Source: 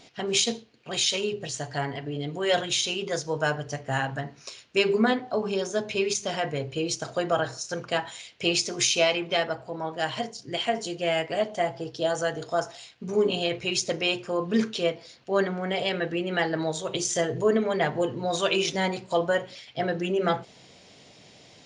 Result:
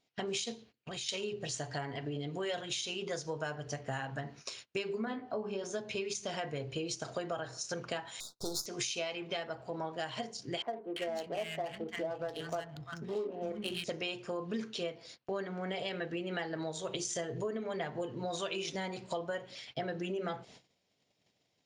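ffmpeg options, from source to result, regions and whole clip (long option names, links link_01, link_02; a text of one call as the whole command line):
ffmpeg -i in.wav -filter_complex "[0:a]asettb=1/sr,asplit=3[link_01][link_02][link_03];[link_01]atrim=end=0.544[link_04];[link_02]atrim=start=0.54:end=1.09,asetpts=PTS-STARTPTS,afade=type=in:duration=0.004:curve=qsin,afade=type=out:start_time=0.546:duration=0.004:curve=qsin,asubboost=boost=9.5:cutoff=220,acompressor=threshold=-38dB:ratio=4:attack=3.2:release=140:knee=1:detection=peak[link_05];[link_03]atrim=start=1.086[link_06];[link_04][link_05]acrossfade=duration=0.004:curve1=hsin:curve2=qsin[link_07];[link_07][link_06]acrossfade=duration=0.004:curve1=qsin:curve2=hsin,asettb=1/sr,asplit=3[link_08][link_09][link_10];[link_08]atrim=end=5.054[link_11];[link_09]atrim=start=5.05:end=5.64,asetpts=PTS-STARTPTS,afade=type=in:duration=0.004:curve=qsin,afade=type=out:start_time=0.586:duration=0.004:curve=qsin,aemphasis=mode=reproduction:type=75kf,bandreject=frequency=3700:width=25,asplit=2[link_12][link_13];[link_13]adelay=19,volume=-5dB[link_14];[link_12][link_14]amix=inputs=2:normalize=0,atrim=end_sample=26019[link_15];[link_10]atrim=start=5.636[link_16];[link_11][link_15]acrossfade=duration=0.004:curve1=hsin:curve2=qsin[link_17];[link_17][link_16]acrossfade=duration=0.004:curve1=qsin:curve2=hsin,asettb=1/sr,asplit=3[link_18][link_19][link_20];[link_18]atrim=end=8.204[link_21];[link_19]atrim=start=8.2:end=8.66,asetpts=PTS-STARTPTS,afade=type=in:duration=0.004:curve=qsin,afade=type=out:start_time=0.456:duration=0.004:curve=qsin,aeval=exprs='if(lt(val(0),0),0.251*val(0),val(0))':channel_layout=same,asuperstop=centerf=2300:order=20:qfactor=1.1,highshelf=frequency=4900:gain=10.5[link_22];[link_20]atrim=start=8.656[link_23];[link_21][link_22]acrossfade=duration=0.004:curve1=hsin:curve2=qsin[link_24];[link_24][link_23]acrossfade=duration=0.004:curve1=qsin:curve2=hsin,asettb=1/sr,asplit=3[link_25][link_26][link_27];[link_25]atrim=end=10.624[link_28];[link_26]atrim=start=10.62:end=13.84,asetpts=PTS-STARTPTS,afade=type=in:duration=0.004:curve=qsin,afade=type=out:start_time=3.216:duration=0.004:curve=qsin,acrossover=split=220|1500[link_29][link_30][link_31];[link_31]adelay=340[link_32];[link_29]adelay=400[link_33];[link_33][link_30][link_32]amix=inputs=3:normalize=0,atrim=end_sample=142002,adynamicsmooth=sensitivity=6.5:basefreq=1200[link_34];[link_27]atrim=start=13.836[link_35];[link_28][link_34]acrossfade=duration=0.004:curve1=hsin:curve2=qsin[link_36];[link_36][link_35]acrossfade=duration=0.004:curve1=qsin:curve2=hsin,agate=range=-25dB:threshold=-48dB:ratio=16:detection=peak,acompressor=threshold=-33dB:ratio=6,volume=-1.5dB" out.wav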